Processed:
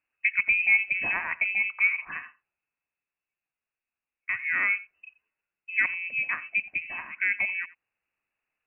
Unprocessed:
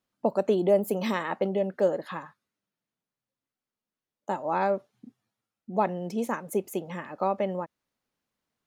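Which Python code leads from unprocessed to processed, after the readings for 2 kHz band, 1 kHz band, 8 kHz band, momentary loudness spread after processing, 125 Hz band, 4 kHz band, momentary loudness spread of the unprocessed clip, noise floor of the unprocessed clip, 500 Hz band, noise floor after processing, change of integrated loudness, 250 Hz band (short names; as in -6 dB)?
+17.5 dB, -11.0 dB, under -30 dB, 11 LU, under -15 dB, n/a, 11 LU, under -85 dBFS, under -25 dB, under -85 dBFS, +3.0 dB, -23.0 dB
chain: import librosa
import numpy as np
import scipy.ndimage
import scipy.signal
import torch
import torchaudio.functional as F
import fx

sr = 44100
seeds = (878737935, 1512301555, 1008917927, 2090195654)

p1 = x + fx.echo_single(x, sr, ms=87, db=-19.0, dry=0)
y = fx.freq_invert(p1, sr, carrier_hz=2800)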